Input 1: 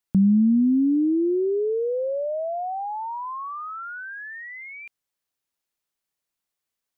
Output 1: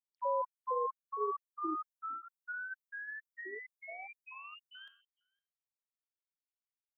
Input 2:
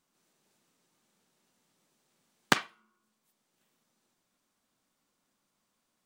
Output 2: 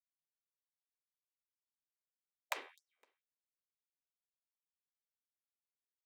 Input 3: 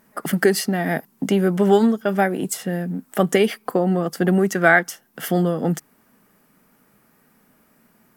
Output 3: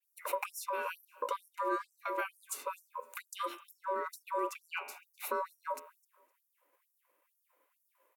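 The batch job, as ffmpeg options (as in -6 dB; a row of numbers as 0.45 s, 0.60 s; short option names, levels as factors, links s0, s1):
-af "bandreject=f=580:w=12,agate=range=0.0224:threshold=0.00224:ratio=3:detection=peak,equalizer=f=4800:w=0.62:g=-6,bandreject=f=81.66:t=h:w=4,bandreject=f=163.32:t=h:w=4,bandreject=f=244.98:t=h:w=4,bandreject=f=326.64:t=h:w=4,bandreject=f=408.3:t=h:w=4,bandreject=f=489.96:t=h:w=4,bandreject=f=571.62:t=h:w=4,bandreject=f=653.28:t=h:w=4,bandreject=f=734.94:t=h:w=4,bandreject=f=816.6:t=h:w=4,bandreject=f=898.26:t=h:w=4,bandreject=f=979.92:t=h:w=4,bandreject=f=1061.58:t=h:w=4,bandreject=f=1143.24:t=h:w=4,bandreject=f=1224.9:t=h:w=4,bandreject=f=1306.56:t=h:w=4,bandreject=f=1388.22:t=h:w=4,bandreject=f=1469.88:t=h:w=4,bandreject=f=1551.54:t=h:w=4,bandreject=f=1633.2:t=h:w=4,bandreject=f=1714.86:t=h:w=4,bandreject=f=1796.52:t=h:w=4,bandreject=f=1878.18:t=h:w=4,bandreject=f=1959.84:t=h:w=4,bandreject=f=2041.5:t=h:w=4,bandreject=f=2123.16:t=h:w=4,bandreject=f=2204.82:t=h:w=4,bandreject=f=2286.48:t=h:w=4,bandreject=f=2368.14:t=h:w=4,bandreject=f=2449.8:t=h:w=4,bandreject=f=2531.46:t=h:w=4,bandreject=f=2613.12:t=h:w=4,bandreject=f=2694.78:t=h:w=4,bandreject=f=2776.44:t=h:w=4,bandreject=f=2858.1:t=h:w=4,bandreject=f=2939.76:t=h:w=4,bandreject=f=3021.42:t=h:w=4,acompressor=threshold=0.0708:ratio=3,afreqshift=14,aeval=exprs='val(0)*sin(2*PI*770*n/s)':c=same,aecho=1:1:256|512:0.0631|0.0196,afftfilt=real='re*gte(b*sr/1024,220*pow(5400/220,0.5+0.5*sin(2*PI*2.2*pts/sr)))':imag='im*gte(b*sr/1024,220*pow(5400/220,0.5+0.5*sin(2*PI*2.2*pts/sr)))':win_size=1024:overlap=0.75,volume=0.501"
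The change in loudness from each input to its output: -16.5 LU, -15.0 LU, -19.0 LU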